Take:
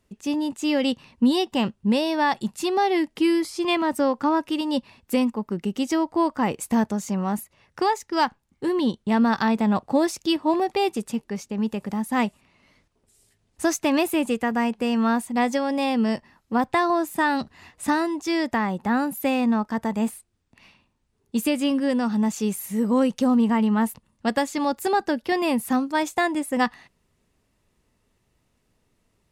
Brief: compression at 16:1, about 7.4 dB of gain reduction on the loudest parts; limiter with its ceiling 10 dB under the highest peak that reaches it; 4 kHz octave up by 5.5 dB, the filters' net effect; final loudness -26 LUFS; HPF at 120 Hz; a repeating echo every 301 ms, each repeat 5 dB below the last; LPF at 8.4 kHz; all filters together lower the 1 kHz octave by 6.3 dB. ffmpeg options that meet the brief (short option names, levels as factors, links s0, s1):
-af "highpass=120,lowpass=8400,equalizer=f=1000:t=o:g=-8.5,equalizer=f=4000:t=o:g=8,acompressor=threshold=0.0708:ratio=16,alimiter=limit=0.075:level=0:latency=1,aecho=1:1:301|602|903|1204|1505|1806|2107:0.562|0.315|0.176|0.0988|0.0553|0.031|0.0173,volume=1.58"